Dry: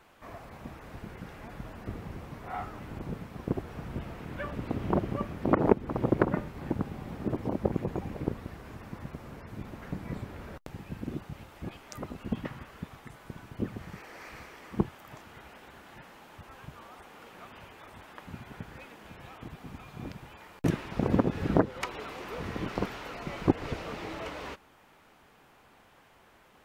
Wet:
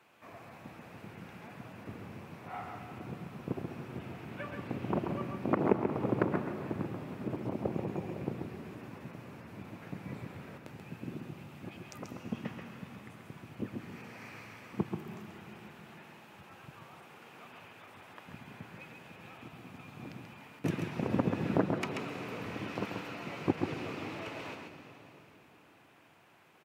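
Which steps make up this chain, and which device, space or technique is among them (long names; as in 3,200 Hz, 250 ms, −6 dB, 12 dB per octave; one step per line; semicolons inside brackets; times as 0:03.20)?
PA in a hall (high-pass filter 100 Hz 24 dB per octave; parametric band 2,500 Hz +6 dB 0.33 octaves; single-tap delay 135 ms −5.5 dB; convolution reverb RT60 3.5 s, pre-delay 113 ms, DRR 8.5 dB)
level −5.5 dB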